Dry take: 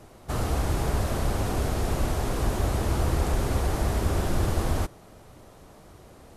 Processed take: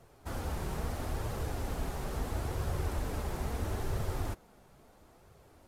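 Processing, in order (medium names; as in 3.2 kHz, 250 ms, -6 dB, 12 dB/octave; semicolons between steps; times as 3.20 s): tape speed +12%; flange 0.75 Hz, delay 1.5 ms, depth 4 ms, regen -46%; trim -6 dB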